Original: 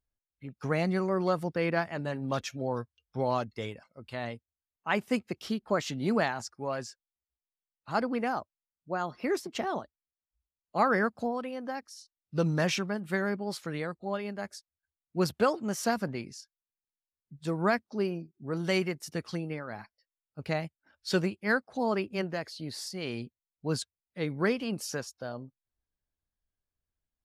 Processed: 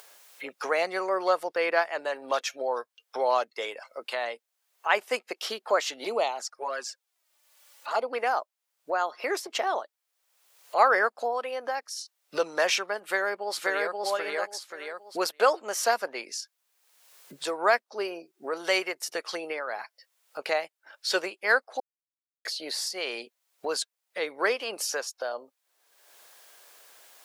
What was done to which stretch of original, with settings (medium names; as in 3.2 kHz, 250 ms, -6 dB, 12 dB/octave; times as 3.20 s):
6.04–8.13 s: touch-sensitive flanger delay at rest 3.5 ms, full sweep at -25.5 dBFS
13.04–14.01 s: echo throw 530 ms, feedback 20%, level -1 dB
21.80–22.45 s: mute
whole clip: high-pass 480 Hz 24 dB/octave; upward compressor, threshold -33 dBFS; trim +6 dB